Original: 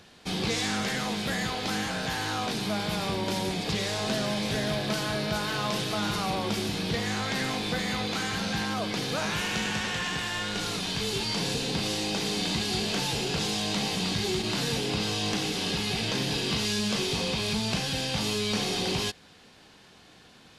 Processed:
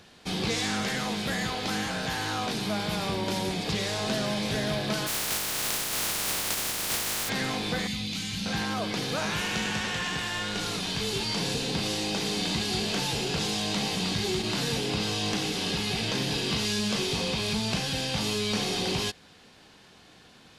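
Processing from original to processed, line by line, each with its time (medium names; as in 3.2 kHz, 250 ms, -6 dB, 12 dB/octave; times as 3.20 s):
5.06–7.28 s: spectral contrast reduction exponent 0.11
7.87–8.46 s: high-order bell 770 Hz -15 dB 2.7 oct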